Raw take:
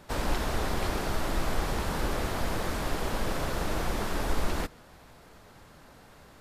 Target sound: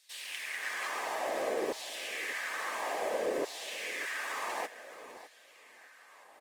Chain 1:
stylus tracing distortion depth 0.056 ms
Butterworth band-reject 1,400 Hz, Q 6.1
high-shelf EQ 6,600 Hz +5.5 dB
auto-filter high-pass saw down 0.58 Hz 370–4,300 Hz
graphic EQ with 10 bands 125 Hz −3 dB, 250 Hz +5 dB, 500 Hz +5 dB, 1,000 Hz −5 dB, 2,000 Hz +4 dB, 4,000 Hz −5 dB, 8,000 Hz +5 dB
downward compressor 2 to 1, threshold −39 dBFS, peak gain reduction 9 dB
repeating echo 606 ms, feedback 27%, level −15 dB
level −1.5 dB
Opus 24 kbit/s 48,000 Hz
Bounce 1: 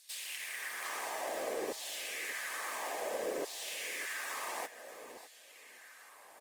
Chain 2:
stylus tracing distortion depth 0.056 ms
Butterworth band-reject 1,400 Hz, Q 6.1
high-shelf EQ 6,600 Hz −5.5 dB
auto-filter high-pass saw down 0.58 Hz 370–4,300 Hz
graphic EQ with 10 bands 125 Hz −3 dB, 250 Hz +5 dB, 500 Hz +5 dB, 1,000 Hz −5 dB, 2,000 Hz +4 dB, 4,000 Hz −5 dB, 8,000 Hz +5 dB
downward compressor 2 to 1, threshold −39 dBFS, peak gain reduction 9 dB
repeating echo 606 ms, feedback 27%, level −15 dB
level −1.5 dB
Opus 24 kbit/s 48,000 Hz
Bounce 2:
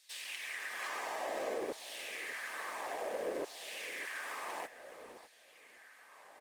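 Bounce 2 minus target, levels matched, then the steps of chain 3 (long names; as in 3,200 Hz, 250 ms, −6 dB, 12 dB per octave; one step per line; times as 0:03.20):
downward compressor: peak gain reduction +4.5 dB
stylus tracing distortion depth 0.056 ms
Butterworth band-reject 1,400 Hz, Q 6.1
high-shelf EQ 6,600 Hz −5.5 dB
auto-filter high-pass saw down 0.58 Hz 370–4,300 Hz
graphic EQ with 10 bands 125 Hz −3 dB, 250 Hz +5 dB, 500 Hz +5 dB, 1,000 Hz −5 dB, 2,000 Hz +4 dB, 4,000 Hz −5 dB, 8,000 Hz +5 dB
downward compressor 2 to 1, threshold −30 dBFS, peak gain reduction 4.5 dB
repeating echo 606 ms, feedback 27%, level −15 dB
level −1.5 dB
Opus 24 kbit/s 48,000 Hz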